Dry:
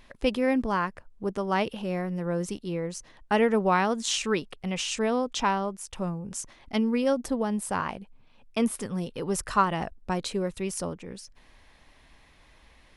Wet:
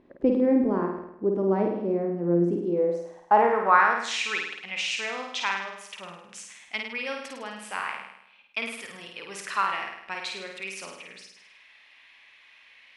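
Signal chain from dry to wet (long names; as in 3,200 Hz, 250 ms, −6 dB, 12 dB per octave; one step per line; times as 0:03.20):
dynamic equaliser 3,000 Hz, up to −7 dB, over −52 dBFS, Q 4.9
flutter between parallel walls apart 8.9 metres, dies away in 0.79 s
band-pass filter sweep 330 Hz → 2,500 Hz, 0:02.54–0:04.32
level +9 dB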